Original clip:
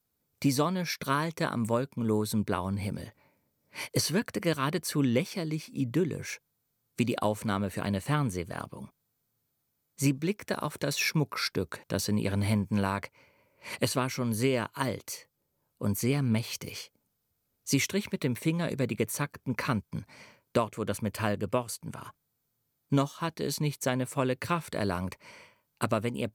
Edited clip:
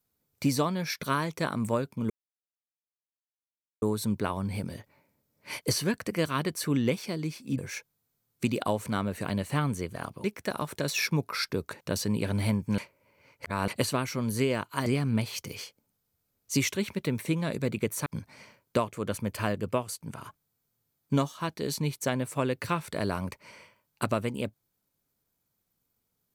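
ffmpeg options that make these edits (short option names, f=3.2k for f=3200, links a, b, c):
-filter_complex "[0:a]asplit=8[a][b][c][d][e][f][g][h];[a]atrim=end=2.1,asetpts=PTS-STARTPTS,afade=t=out:st=2.096:d=0.004:c=hsin,apad=pad_dur=1.72[i];[b]atrim=start=2.1:end=5.862,asetpts=PTS-STARTPTS,afade=t=in:d=0.004:c=hsin[j];[c]atrim=start=6.138:end=8.802[k];[d]atrim=start=10.268:end=12.812[l];[e]atrim=start=12.808:end=13.712,asetpts=PTS-STARTPTS,areverse[m];[f]atrim=start=13.708:end=14.892[n];[g]atrim=start=16.028:end=19.232[o];[h]atrim=start=19.858[p];[i][j]concat=n=2:v=0:a=1[q];[q][k]acrossfade=d=0.004:c1=hsin:c2=hsin[r];[r][l]acrossfade=d=0.004:c1=hsin:c2=hsin[s];[s][m]acrossfade=d=0.004:c1=hsin:c2=hsin[t];[t][n]acrossfade=d=0.004:c1=hsin:c2=hsin[u];[u][o]acrossfade=d=0.004:c1=hsin:c2=hsin[v];[v][p]acrossfade=d=0.004:c1=hsin:c2=hsin"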